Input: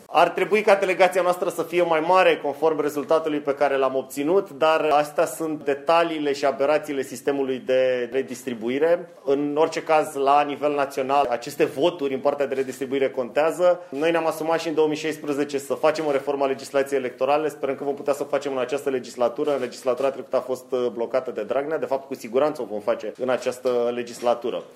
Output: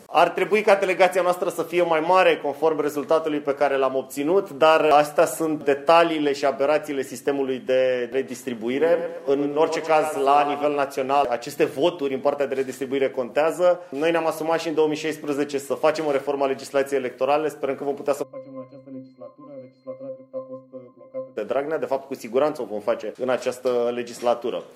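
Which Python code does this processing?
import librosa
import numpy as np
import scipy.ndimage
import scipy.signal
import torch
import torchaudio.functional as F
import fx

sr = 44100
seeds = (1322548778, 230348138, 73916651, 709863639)

y = fx.echo_feedback(x, sr, ms=115, feedback_pct=46, wet_db=-10.0, at=(8.66, 10.66), fade=0.02)
y = fx.octave_resonator(y, sr, note='C', decay_s=0.3, at=(18.22, 21.36), fade=0.02)
y = fx.edit(y, sr, fx.clip_gain(start_s=4.43, length_s=1.85, db=3.0), tone=tone)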